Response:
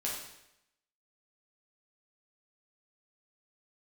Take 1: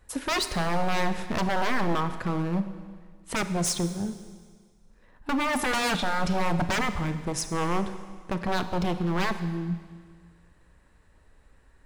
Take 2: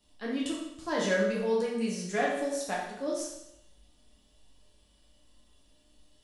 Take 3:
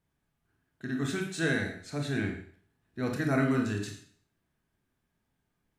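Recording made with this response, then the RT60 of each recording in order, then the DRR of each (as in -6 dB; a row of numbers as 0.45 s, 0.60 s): 2; 1.7 s, 0.85 s, 0.50 s; 10.0 dB, -5.0 dB, 1.5 dB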